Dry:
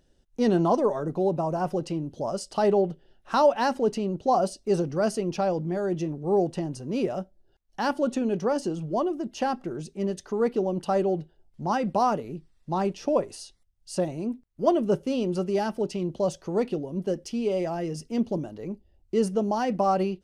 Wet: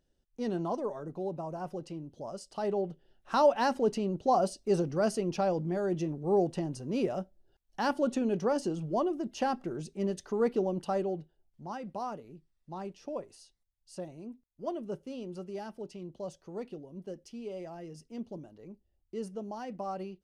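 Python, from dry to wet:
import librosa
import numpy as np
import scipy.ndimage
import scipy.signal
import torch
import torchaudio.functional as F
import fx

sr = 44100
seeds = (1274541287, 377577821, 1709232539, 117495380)

y = fx.gain(x, sr, db=fx.line((2.56, -11.0), (3.48, -3.5), (10.61, -3.5), (11.73, -14.0)))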